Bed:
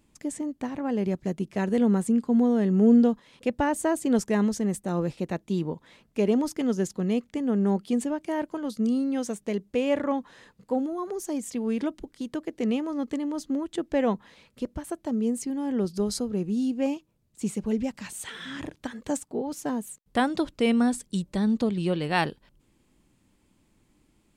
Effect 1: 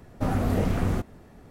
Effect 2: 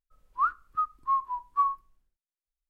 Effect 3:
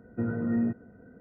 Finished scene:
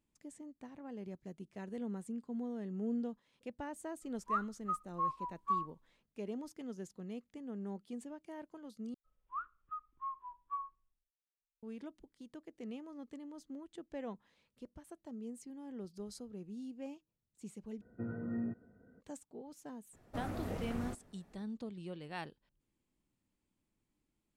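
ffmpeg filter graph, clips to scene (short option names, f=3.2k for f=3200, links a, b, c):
-filter_complex "[2:a]asplit=2[a][b];[0:a]volume=-19dB[c];[b]aresample=8000,aresample=44100[d];[1:a]lowshelf=f=220:g=-5.5[e];[c]asplit=3[f][g][h];[f]atrim=end=8.944[i];[d]atrim=end=2.69,asetpts=PTS-STARTPTS,volume=-15.5dB[j];[g]atrim=start=11.626:end=17.814[k];[3:a]atrim=end=1.2,asetpts=PTS-STARTPTS,volume=-11dB[l];[h]atrim=start=19.006[m];[a]atrim=end=2.69,asetpts=PTS-STARTPTS,volume=-9dB,afade=t=in:d=0.004:c=hsin,afade=t=out:st=2.686:d=0.004:c=hsin,adelay=3910[n];[e]atrim=end=1.5,asetpts=PTS-STARTPTS,volume=-13dB,afade=t=in:d=0.004:c=hsin,afade=t=out:st=1.496:d=0.004:c=hsin,adelay=19930[o];[i][j]acrossfade=d=0.004:c1=hsin:c2=hsin[p];[p][k]acrossfade=d=0.004:c1=hsin:c2=hsin[q];[q][l]acrossfade=d=0.004:c1=hsin:c2=hsin[r];[r][m]acrossfade=d=0.004:c1=hsin:c2=hsin[s];[s][n][o]amix=inputs=3:normalize=0"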